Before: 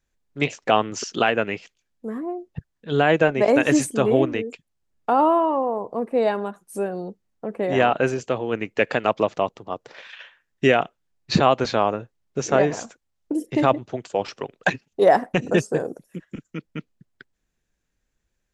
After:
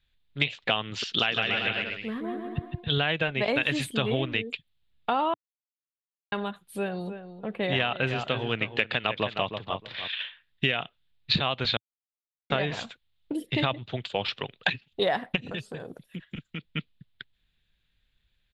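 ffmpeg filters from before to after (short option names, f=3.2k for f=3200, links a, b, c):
-filter_complex "[0:a]asettb=1/sr,asplit=3[a][b][c];[a]atrim=end=1.034[d];[b]atrim=start=1.03:end=3.02,asetpts=PTS-STARTPTS,afade=t=in:d=0.004:c=qsin,afade=t=out:st=1.986:d=0.004:c=qsin,aecho=1:1:160|288|390.4|472.3|537.9:0.631|0.398|0.251|0.158|0.1,atrim=end_sample=87759[e];[c]atrim=start=3.016[f];[d][e]acrossfade=d=0.004:c1=hsin:c2=qsin[g];[g][f]acrossfade=d=0.004:c1=qsin:c2=hsin,asplit=3[h][i][j];[h]afade=t=out:st=6.86:d=0.02[k];[i]asplit=2[l][m];[m]adelay=311,lowpass=f=2k:p=1,volume=-10dB,asplit=2[n][o];[o]adelay=311,lowpass=f=2k:p=1,volume=0.18,asplit=2[p][q];[q]adelay=311,lowpass=f=2k:p=1,volume=0.18[r];[l][n][p][r]amix=inputs=4:normalize=0,afade=t=in:st=6.86:d=0.02,afade=t=out:st=10.07:d=0.02[s];[j]afade=t=in:st=10.07:d=0.02[t];[k][s][t]amix=inputs=3:normalize=0,asplit=3[u][v][w];[u]afade=t=out:st=15.35:d=0.02[x];[v]acompressor=threshold=-30dB:ratio=5:attack=3.2:release=140:knee=1:detection=peak,afade=t=in:st=15.35:d=0.02,afade=t=out:st=16.7:d=0.02[y];[w]afade=t=in:st=16.7:d=0.02[z];[x][y][z]amix=inputs=3:normalize=0,asplit=5[aa][ab][ac][ad][ae];[aa]atrim=end=5.34,asetpts=PTS-STARTPTS,afade=t=out:st=5.336:d=0.004:c=hsin[af];[ab]atrim=start=5.34:end=6.32,asetpts=PTS-STARTPTS,volume=0[ag];[ac]atrim=start=6.32:end=11.77,asetpts=PTS-STARTPTS,afade=t=in:d=0.004:c=hsin,afade=t=out:st=5.446:d=0.004:c=hsin[ah];[ad]atrim=start=11.77:end=12.5,asetpts=PTS-STARTPTS,volume=0[ai];[ae]atrim=start=12.5,asetpts=PTS-STARTPTS,afade=t=in:d=0.004:c=hsin[aj];[af][ag][ah][ai][aj]concat=n=5:v=0:a=1,firequalizer=gain_entry='entry(110,0);entry(300,-11);entry(3600,11);entry(5900,-18);entry(11000,-8)':delay=0.05:min_phase=1,acompressor=threshold=-26dB:ratio=6,volume=4dB"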